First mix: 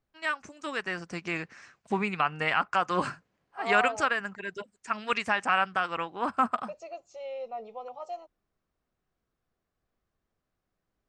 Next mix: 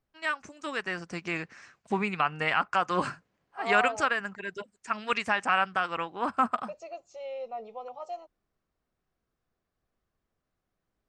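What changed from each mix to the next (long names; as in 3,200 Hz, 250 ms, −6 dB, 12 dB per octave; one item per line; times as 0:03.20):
nothing changed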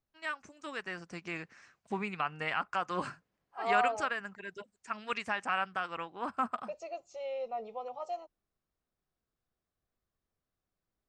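first voice −7.0 dB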